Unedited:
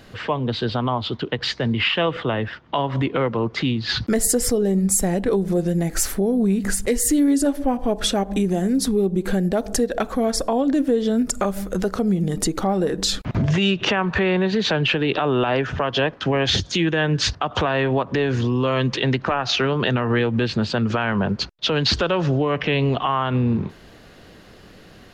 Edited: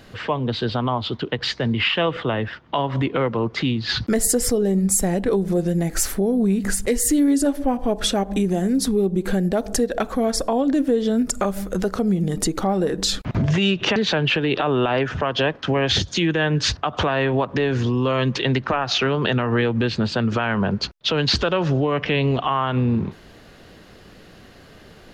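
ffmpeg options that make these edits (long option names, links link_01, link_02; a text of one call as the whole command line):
ffmpeg -i in.wav -filter_complex "[0:a]asplit=2[link_01][link_02];[link_01]atrim=end=13.962[link_03];[link_02]atrim=start=14.538[link_04];[link_03][link_04]acrossfade=duration=0.004:curve1=hsin:curve2=hsin" out.wav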